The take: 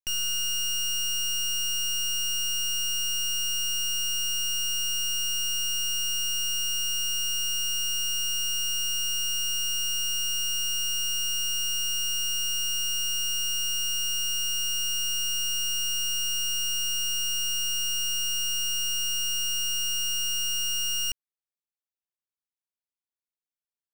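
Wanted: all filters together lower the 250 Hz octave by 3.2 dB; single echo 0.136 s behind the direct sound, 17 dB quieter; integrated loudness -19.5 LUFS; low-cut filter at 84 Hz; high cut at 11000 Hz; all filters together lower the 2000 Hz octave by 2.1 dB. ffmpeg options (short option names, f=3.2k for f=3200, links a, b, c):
-af "highpass=84,lowpass=11k,equalizer=f=250:t=o:g=-7,equalizer=f=2k:t=o:g=-4,aecho=1:1:136:0.141,volume=8.5dB"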